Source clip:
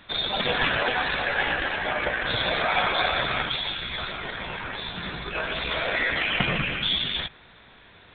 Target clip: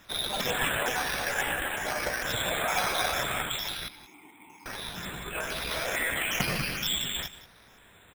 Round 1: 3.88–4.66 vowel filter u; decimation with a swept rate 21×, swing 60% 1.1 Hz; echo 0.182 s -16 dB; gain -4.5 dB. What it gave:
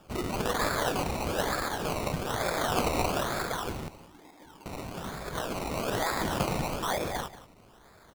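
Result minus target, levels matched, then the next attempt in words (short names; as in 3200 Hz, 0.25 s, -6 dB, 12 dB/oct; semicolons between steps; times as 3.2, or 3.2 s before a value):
decimation with a swept rate: distortion +17 dB
3.88–4.66 vowel filter u; decimation with a swept rate 5×, swing 60% 1.1 Hz; echo 0.182 s -16 dB; gain -4.5 dB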